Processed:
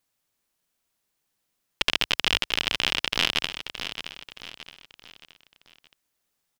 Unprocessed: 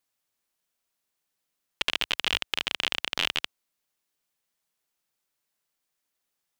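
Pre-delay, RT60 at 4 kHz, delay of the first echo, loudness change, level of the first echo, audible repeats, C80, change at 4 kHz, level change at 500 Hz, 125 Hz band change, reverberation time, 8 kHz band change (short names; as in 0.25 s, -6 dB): none, none, 0.621 s, +2.5 dB, -10.0 dB, 4, none, +4.0 dB, +4.5 dB, +8.5 dB, none, +4.5 dB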